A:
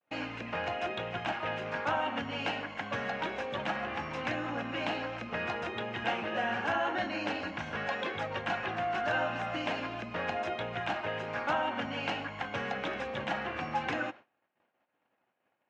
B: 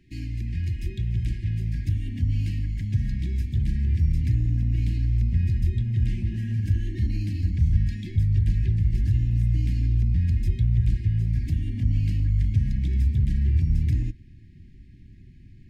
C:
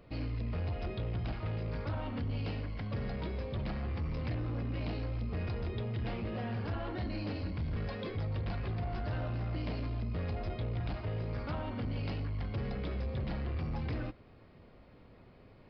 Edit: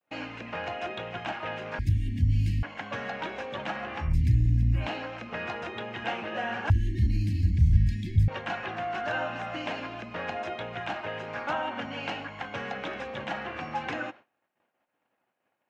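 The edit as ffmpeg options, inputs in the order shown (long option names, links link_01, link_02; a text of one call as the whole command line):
ffmpeg -i take0.wav -i take1.wav -filter_complex "[1:a]asplit=3[link_01][link_02][link_03];[0:a]asplit=4[link_04][link_05][link_06][link_07];[link_04]atrim=end=1.792[link_08];[link_01]atrim=start=1.788:end=2.632[link_09];[link_05]atrim=start=2.628:end=4.16[link_10];[link_02]atrim=start=4:end=4.88[link_11];[link_06]atrim=start=4.72:end=6.702[link_12];[link_03]atrim=start=6.698:end=8.282[link_13];[link_07]atrim=start=8.278[link_14];[link_08][link_09]acrossfade=duration=0.004:curve1=hsin:curve2=hsin[link_15];[link_15][link_10]acrossfade=duration=0.004:curve1=hsin:curve2=hsin[link_16];[link_16][link_11]acrossfade=duration=0.16:curve1=tri:curve2=tri[link_17];[link_17][link_12]acrossfade=duration=0.16:curve1=tri:curve2=tri[link_18];[link_18][link_13]acrossfade=duration=0.004:curve1=hsin:curve2=hsin[link_19];[link_19][link_14]acrossfade=duration=0.004:curve1=hsin:curve2=hsin" out.wav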